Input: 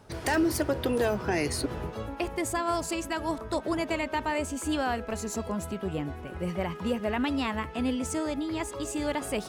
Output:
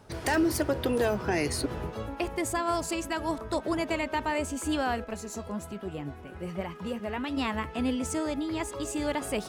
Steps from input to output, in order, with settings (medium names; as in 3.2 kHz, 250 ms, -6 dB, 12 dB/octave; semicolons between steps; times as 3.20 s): 5.04–7.37 s: flange 1.2 Hz, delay 2.7 ms, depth 8.9 ms, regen +63%